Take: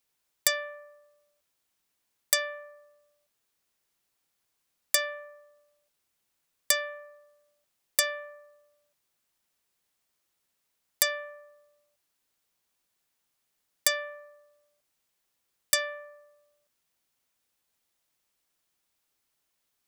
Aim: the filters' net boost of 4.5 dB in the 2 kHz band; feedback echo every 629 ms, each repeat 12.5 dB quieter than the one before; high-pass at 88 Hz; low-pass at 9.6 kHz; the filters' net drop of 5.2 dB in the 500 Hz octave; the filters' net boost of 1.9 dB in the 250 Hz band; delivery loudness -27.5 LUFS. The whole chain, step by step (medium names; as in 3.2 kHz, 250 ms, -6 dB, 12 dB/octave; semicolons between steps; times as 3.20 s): high-pass 88 Hz; low-pass 9.6 kHz; peaking EQ 250 Hz +5 dB; peaking EQ 500 Hz -7.5 dB; peaking EQ 2 kHz +5.5 dB; feedback delay 629 ms, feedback 24%, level -12.5 dB; trim +3 dB